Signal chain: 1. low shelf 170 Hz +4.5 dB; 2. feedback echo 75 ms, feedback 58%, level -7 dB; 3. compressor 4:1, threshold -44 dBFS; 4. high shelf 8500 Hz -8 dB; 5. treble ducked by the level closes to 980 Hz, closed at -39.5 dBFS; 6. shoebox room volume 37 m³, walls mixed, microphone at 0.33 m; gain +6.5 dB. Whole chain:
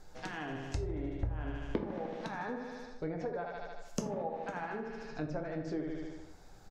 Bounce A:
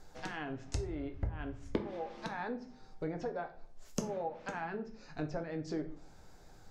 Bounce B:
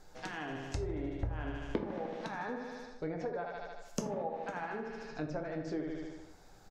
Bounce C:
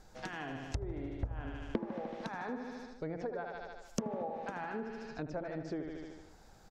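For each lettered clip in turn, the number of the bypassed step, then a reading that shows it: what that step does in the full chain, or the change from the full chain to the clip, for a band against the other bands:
2, crest factor change +2.5 dB; 1, 125 Hz band -2.0 dB; 6, crest factor change +2.5 dB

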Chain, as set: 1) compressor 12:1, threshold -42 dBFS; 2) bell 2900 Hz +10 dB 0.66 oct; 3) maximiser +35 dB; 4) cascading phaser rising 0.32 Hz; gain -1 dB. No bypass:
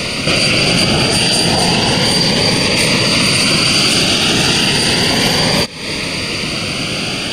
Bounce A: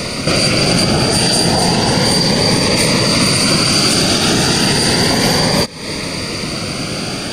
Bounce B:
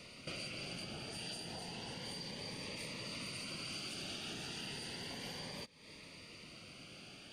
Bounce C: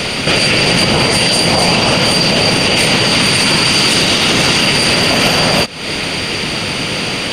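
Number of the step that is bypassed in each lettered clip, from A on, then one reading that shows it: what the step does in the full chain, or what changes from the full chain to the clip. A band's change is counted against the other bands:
2, 2 kHz band -4.5 dB; 3, crest factor change +3.0 dB; 4, 1 kHz band +2.5 dB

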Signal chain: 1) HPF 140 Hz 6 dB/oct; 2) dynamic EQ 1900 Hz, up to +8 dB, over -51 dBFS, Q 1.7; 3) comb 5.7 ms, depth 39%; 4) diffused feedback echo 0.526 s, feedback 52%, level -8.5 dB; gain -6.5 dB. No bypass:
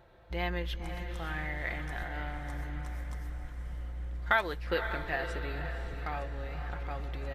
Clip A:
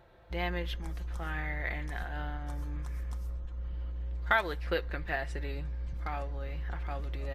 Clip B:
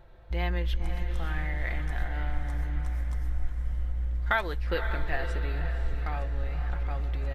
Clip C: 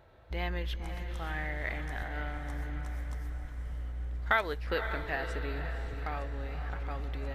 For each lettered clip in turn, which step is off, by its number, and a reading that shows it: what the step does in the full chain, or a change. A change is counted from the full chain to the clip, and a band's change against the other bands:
4, echo-to-direct -7.0 dB to none; 1, 125 Hz band +7.5 dB; 3, 125 Hz band +1.5 dB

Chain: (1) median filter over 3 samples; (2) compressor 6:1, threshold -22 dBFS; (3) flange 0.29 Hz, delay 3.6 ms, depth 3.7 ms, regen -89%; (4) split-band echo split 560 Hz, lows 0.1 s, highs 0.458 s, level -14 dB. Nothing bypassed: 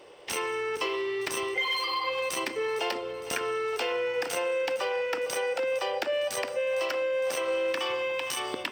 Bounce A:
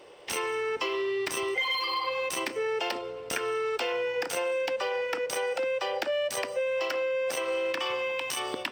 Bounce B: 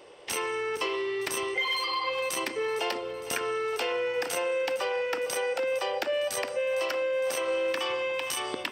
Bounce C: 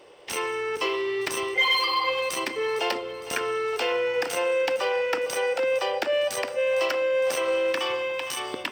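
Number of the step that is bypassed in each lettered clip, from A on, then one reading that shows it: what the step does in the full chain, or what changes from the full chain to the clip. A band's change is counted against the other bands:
4, echo-to-direct -12.5 dB to none; 1, 8 kHz band +1.5 dB; 2, mean gain reduction 3.0 dB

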